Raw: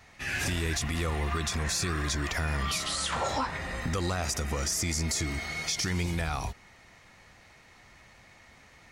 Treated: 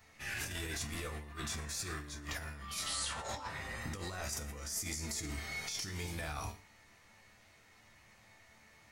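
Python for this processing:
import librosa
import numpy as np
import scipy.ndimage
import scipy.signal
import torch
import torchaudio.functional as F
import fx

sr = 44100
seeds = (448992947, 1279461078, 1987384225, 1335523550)

y = fx.resonator_bank(x, sr, root=38, chord='sus4', decay_s=0.31)
y = fx.over_compress(y, sr, threshold_db=-43.0, ratio=-0.5)
y = fx.high_shelf(y, sr, hz=10000.0, db=11.5)
y = y + 10.0 ** (-21.5 / 20.0) * np.pad(y, (int(116 * sr / 1000.0), 0))[:len(y)]
y = F.gain(torch.from_numpy(y), 2.0).numpy()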